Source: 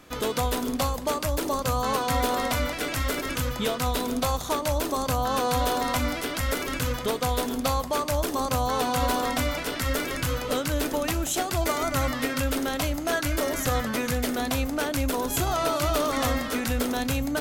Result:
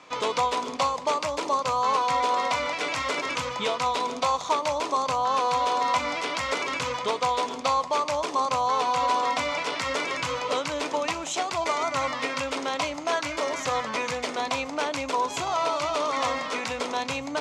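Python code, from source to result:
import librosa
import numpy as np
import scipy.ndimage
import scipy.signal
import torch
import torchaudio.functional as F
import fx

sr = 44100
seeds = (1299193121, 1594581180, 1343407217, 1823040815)

y = fx.rider(x, sr, range_db=10, speed_s=0.5)
y = fx.cabinet(y, sr, low_hz=230.0, low_slope=12, high_hz=6900.0, hz=(240.0, 350.0, 1000.0, 1600.0, 2300.0), db=(-9, -6, 9, -5, 5))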